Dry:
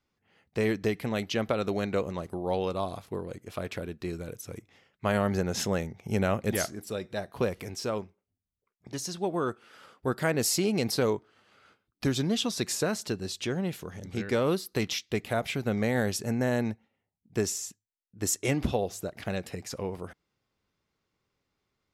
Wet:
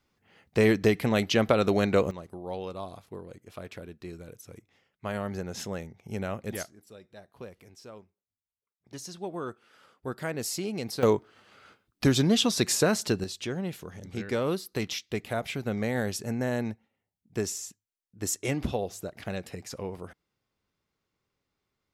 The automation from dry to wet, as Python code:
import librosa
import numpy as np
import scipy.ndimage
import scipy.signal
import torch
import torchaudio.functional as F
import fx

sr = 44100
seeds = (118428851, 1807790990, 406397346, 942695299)

y = fx.gain(x, sr, db=fx.steps((0.0, 5.5), (2.11, -6.5), (6.63, -15.0), (8.91, -6.0), (11.03, 5.0), (13.24, -2.0)))